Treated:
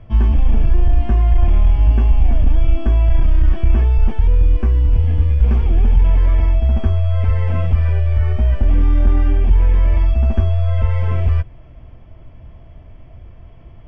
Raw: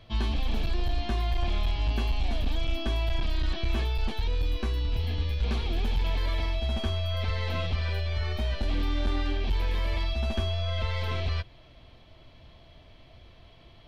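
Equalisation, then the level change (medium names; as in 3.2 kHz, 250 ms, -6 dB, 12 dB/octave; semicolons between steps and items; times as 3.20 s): boxcar filter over 11 samples; bass shelf 190 Hz +10.5 dB; +5.5 dB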